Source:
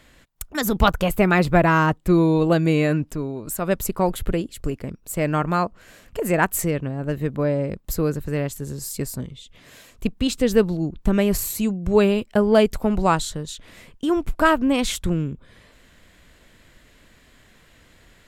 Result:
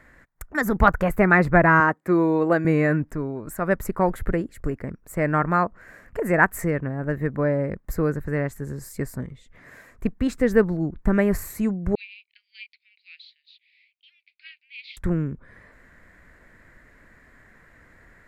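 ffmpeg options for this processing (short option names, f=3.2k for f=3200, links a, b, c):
-filter_complex "[0:a]asettb=1/sr,asplit=3[a][b][c];[a]atrim=end=1.804[d];[b]atrim=start=1.8:end=2.65,asetpts=PTS-STARTPTS,afade=t=in:d=0.004:c=qsin,afade=t=out:st=0.846:d=0.004:c=qsin,highpass=240[e];[c]atrim=start=2.646[f];[d][e]acrossfade=d=0.004:c1=hsin:c2=qsin[g];[g][f]acrossfade=d=0.004:c1=qsin:c2=hsin,asettb=1/sr,asplit=3[h][i][j];[h]atrim=end=11.954[k];[i]atrim=start=11.95:end=14.97,asetpts=PTS-STARTPTS,afade=t=in:d=0.004:c=qsin,afade=t=out:st=3.016:d=0.004:c=qsin,asuperpass=centerf=3300:order=12:qfactor=1.4[l];[j]atrim=start=14.966[m];[k][l]acrossfade=d=0.004:c1=hsin:c2=qsin[n];[n][m]acrossfade=d=0.004:c1=qsin:c2=hsin,highshelf=f=2.4k:t=q:w=3:g=-9,volume=-1dB"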